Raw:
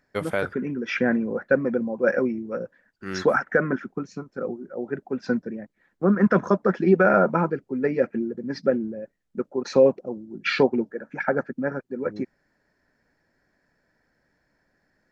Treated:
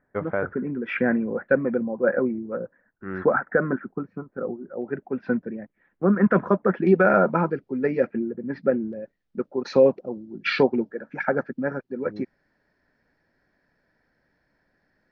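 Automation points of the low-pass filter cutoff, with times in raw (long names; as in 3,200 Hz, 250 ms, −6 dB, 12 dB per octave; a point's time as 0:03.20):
low-pass filter 24 dB per octave
1,700 Hz
from 0:00.75 2,700 Hz
from 0:01.82 1,700 Hz
from 0:04.82 2,800 Hz
from 0:06.87 4,800 Hz
from 0:08.13 2,800 Hz
from 0:08.93 5,100 Hz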